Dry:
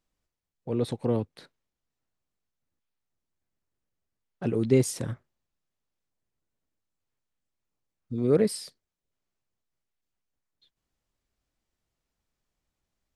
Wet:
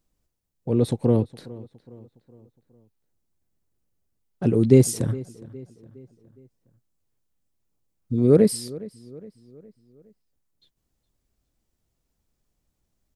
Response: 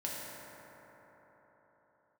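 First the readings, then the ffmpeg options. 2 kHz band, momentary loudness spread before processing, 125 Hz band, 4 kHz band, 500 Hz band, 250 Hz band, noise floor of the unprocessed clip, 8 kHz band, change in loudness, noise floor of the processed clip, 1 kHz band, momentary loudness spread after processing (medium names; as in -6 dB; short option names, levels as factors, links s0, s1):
0.0 dB, 17 LU, +8.5 dB, +3.0 dB, +6.0 dB, +7.5 dB, under -85 dBFS, +6.0 dB, +6.5 dB, -77 dBFS, +2.5 dB, 22 LU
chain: -filter_complex "[0:a]equalizer=f=1900:w=0.32:g=-9,asplit=2[s0][s1];[s1]adelay=413,lowpass=f=3800:p=1,volume=0.106,asplit=2[s2][s3];[s3]adelay=413,lowpass=f=3800:p=1,volume=0.48,asplit=2[s4][s5];[s5]adelay=413,lowpass=f=3800:p=1,volume=0.48,asplit=2[s6][s7];[s7]adelay=413,lowpass=f=3800:p=1,volume=0.48[s8];[s2][s4][s6][s8]amix=inputs=4:normalize=0[s9];[s0][s9]amix=inputs=2:normalize=0,volume=2.82"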